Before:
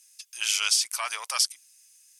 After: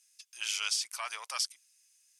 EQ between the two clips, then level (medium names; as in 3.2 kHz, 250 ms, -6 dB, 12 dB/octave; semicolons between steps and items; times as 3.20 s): treble shelf 10 kHz -9.5 dB; -6.5 dB